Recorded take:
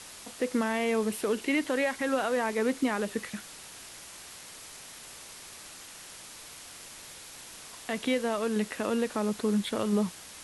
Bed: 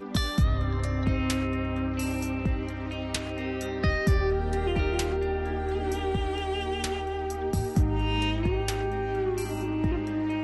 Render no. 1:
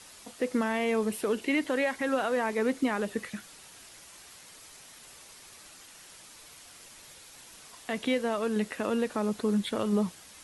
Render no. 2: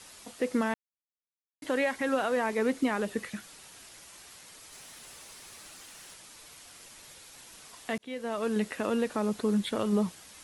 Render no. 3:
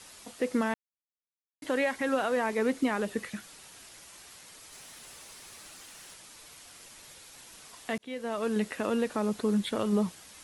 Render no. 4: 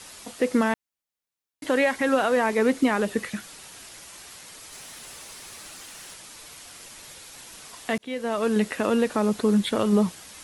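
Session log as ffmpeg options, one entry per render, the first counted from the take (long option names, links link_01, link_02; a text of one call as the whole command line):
ffmpeg -i in.wav -af "afftdn=noise_reduction=6:noise_floor=-47" out.wav
ffmpeg -i in.wav -filter_complex "[0:a]asettb=1/sr,asplit=3[link_01][link_02][link_03];[link_01]atrim=end=4.724[link_04];[link_02]atrim=start=4.72:end=6.14,asetpts=PTS-STARTPTS,afade=type=in:duration=0.004:curve=qsin,afade=type=out:start_time=1.416:duration=0.004:curve=qsin,aeval=exprs='val(0)+0.5*0.00168*sgn(val(0))':channel_layout=same[link_05];[link_03]atrim=start=6.136[link_06];[link_04][link_05]acrossfade=duration=0.004:curve1=hsin:curve2=qsin[link_07];[link_07][link_06]acrossfade=duration=0.004:curve1=qsin:curve2=hsin,asplit=4[link_08][link_09][link_10][link_11];[link_08]atrim=end=0.74,asetpts=PTS-STARTPTS,afade=type=out:start_time=0.736:duration=0.004:curve=hsin[link_12];[link_09]atrim=start=0.74:end=1.62,asetpts=PTS-STARTPTS,volume=0[link_13];[link_10]atrim=start=1.62:end=7.98,asetpts=PTS-STARTPTS,afade=type=in:duration=0.004:curve=hsin,afade=type=out:start_time=6.356:duration=0.004:curve=hsin[link_14];[link_11]atrim=start=7.98,asetpts=PTS-STARTPTS,afade=type=in:duration=0.5[link_15];[link_12][link_13][link_14][link_15]concat=n=4:v=0:a=1" out.wav
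ffmpeg -i in.wav -af anull out.wav
ffmpeg -i in.wav -af "volume=6.5dB" out.wav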